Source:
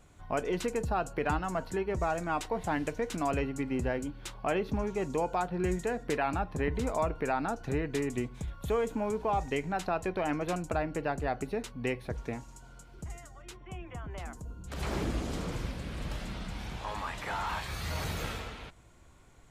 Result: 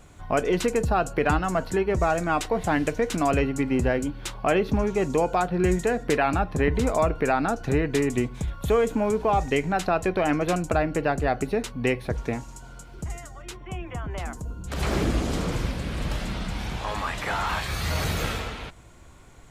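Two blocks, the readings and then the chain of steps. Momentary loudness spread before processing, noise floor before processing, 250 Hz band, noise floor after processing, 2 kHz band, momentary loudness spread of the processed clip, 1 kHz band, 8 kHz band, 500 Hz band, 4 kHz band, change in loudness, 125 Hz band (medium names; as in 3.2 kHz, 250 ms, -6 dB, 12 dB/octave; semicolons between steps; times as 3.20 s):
11 LU, -55 dBFS, +8.5 dB, -46 dBFS, +8.5 dB, 11 LU, +7.0 dB, +8.5 dB, +8.5 dB, +8.5 dB, +8.0 dB, +8.5 dB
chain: dynamic bell 920 Hz, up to -5 dB, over -49 dBFS, Q 5.7; trim +8.5 dB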